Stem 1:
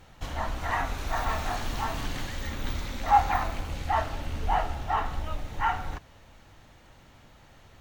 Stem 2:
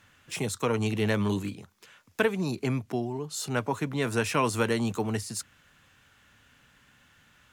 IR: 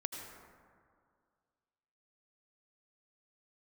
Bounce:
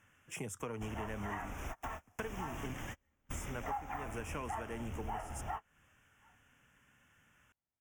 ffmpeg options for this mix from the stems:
-filter_complex "[0:a]acrusher=bits=8:mode=log:mix=0:aa=0.000001,highpass=f=51:p=1,adelay=600,volume=0.794[s0];[1:a]volume=0.422,asplit=3[s1][s2][s3];[s1]atrim=end=2.74,asetpts=PTS-STARTPTS,afade=t=out:st=2.736:d=0.004:c=hsin[s4];[s2]atrim=start=2.74:end=3.29,asetpts=PTS-STARTPTS,volume=0[s5];[s3]atrim=start=3.29,asetpts=PTS-STARTPTS,afade=t=in:d=0.004:c=hsin[s6];[s4][s5][s6]concat=n=3:v=0:a=1,asplit=2[s7][s8];[s8]apad=whole_len=370786[s9];[s0][s9]sidechaingate=range=0.00891:threshold=0.001:ratio=16:detection=peak[s10];[s10][s7]amix=inputs=2:normalize=0,asuperstop=centerf=4200:order=4:qfactor=1.6,acompressor=threshold=0.0126:ratio=6"

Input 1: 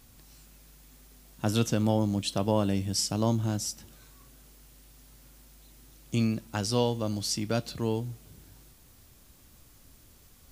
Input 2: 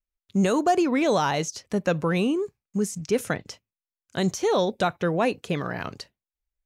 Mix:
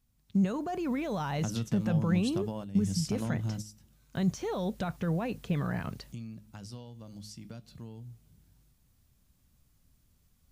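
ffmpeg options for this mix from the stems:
-filter_complex "[0:a]bandreject=f=105.7:t=h:w=4,bandreject=f=211.4:t=h:w=4,bandreject=f=317.1:t=h:w=4,bandreject=f=422.8:t=h:w=4,bandreject=f=528.5:t=h:w=4,acompressor=threshold=0.0355:ratio=5,volume=0.531,afade=t=in:st=0.67:d=0.26:silence=0.473151[s0];[1:a]lowpass=f=3300:p=1,alimiter=limit=0.0794:level=0:latency=1:release=27,volume=0.596,asplit=2[s1][s2];[s2]apad=whole_len=463539[s3];[s0][s3]sidechaingate=range=0.316:threshold=0.00141:ratio=16:detection=peak[s4];[s4][s1]amix=inputs=2:normalize=0,lowshelf=f=250:t=q:w=1.5:g=6.5"

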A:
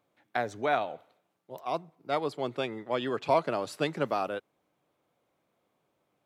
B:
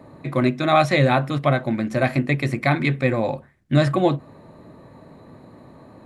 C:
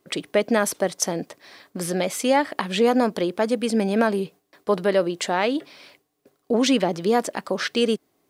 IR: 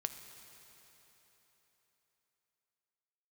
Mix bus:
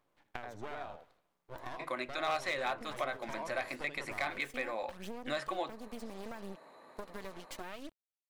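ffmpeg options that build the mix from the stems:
-filter_complex "[0:a]equalizer=f=990:t=o:w=0.33:g=6.5,volume=1,asplit=2[s0][s1];[s1]volume=0.15[s2];[1:a]highpass=690,volume=5.01,asoftclip=hard,volume=0.2,adelay=1550,volume=0.668[s3];[2:a]acrusher=bits=4:mix=0:aa=0.5,aphaser=in_gain=1:out_gain=1:delay=4.7:decay=0.52:speed=0.7:type=sinusoidal,adelay=2300,volume=0.168[s4];[s0][s4]amix=inputs=2:normalize=0,aeval=exprs='max(val(0),0)':c=same,acompressor=threshold=0.0141:ratio=6,volume=1[s5];[s2]aecho=0:1:78:1[s6];[s3][s5][s6]amix=inputs=3:normalize=0,acompressor=threshold=0.0112:ratio=2"

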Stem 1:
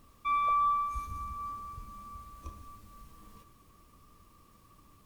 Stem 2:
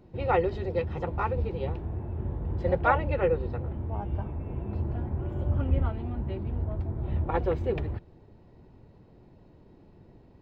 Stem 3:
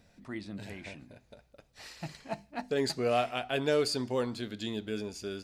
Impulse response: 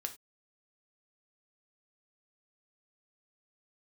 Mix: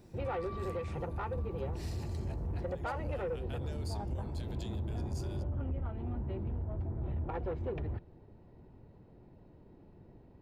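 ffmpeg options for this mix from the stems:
-filter_complex "[0:a]volume=0.112[s0];[1:a]highshelf=f=3600:g=-10,volume=0.75[s1];[2:a]acompressor=threshold=0.00891:ratio=5,crystalizer=i=1.5:c=0,volume=0.501[s2];[s1][s2]amix=inputs=2:normalize=0,bandreject=f=1100:w=28,alimiter=level_in=1.19:limit=0.0631:level=0:latency=1:release=206,volume=0.841,volume=1[s3];[s0][s3]amix=inputs=2:normalize=0,asoftclip=type=tanh:threshold=0.0355"

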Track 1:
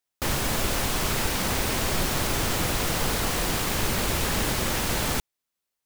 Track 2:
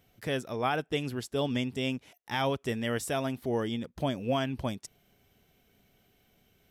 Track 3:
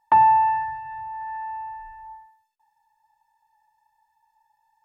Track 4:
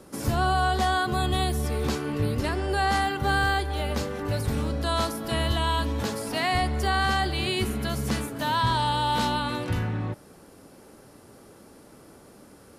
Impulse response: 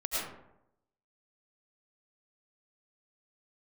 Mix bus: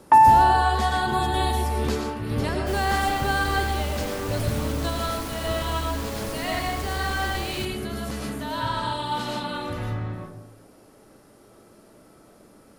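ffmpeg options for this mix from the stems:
-filter_complex "[0:a]adelay=2450,volume=0.282[s0];[1:a]alimiter=level_in=1.41:limit=0.0631:level=0:latency=1,volume=0.708,aeval=exprs='val(0)*gte(abs(val(0)),0.00178)':c=same,volume=0.531,asplit=2[s1][s2];[2:a]volume=1.26[s3];[3:a]volume=0.631,asplit=2[s4][s5];[s5]volume=0.562[s6];[s2]apad=whole_len=563659[s7];[s4][s7]sidechaingate=range=0.251:threshold=0.00282:ratio=16:detection=peak[s8];[4:a]atrim=start_sample=2205[s9];[s6][s9]afir=irnorm=-1:irlink=0[s10];[s0][s1][s3][s8][s10]amix=inputs=5:normalize=0"

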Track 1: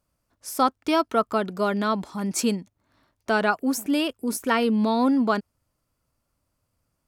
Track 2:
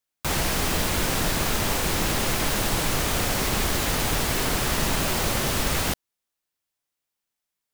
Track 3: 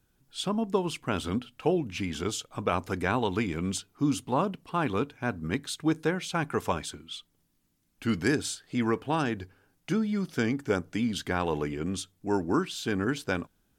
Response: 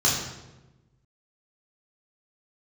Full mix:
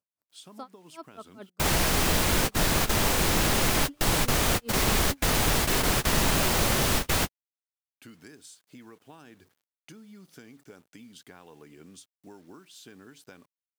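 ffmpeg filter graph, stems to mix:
-filter_complex "[0:a]aeval=exprs='val(0)*pow(10,-31*(0.5-0.5*cos(2*PI*4.9*n/s))/20)':c=same,volume=0.2[s0];[1:a]adelay=1350,volume=1.06[s1];[2:a]aemphasis=mode=production:type=cd,acompressor=threshold=0.02:ratio=16,acrusher=bits=8:mix=0:aa=0.000001,volume=0.282,asplit=2[s2][s3];[s3]apad=whole_len=400691[s4];[s1][s4]sidechaingate=range=0.00631:threshold=0.00141:ratio=16:detection=peak[s5];[s0][s2]amix=inputs=2:normalize=0,highpass=130,alimiter=level_in=1.78:limit=0.0631:level=0:latency=1:release=248,volume=0.562,volume=1[s6];[s5][s6]amix=inputs=2:normalize=0"

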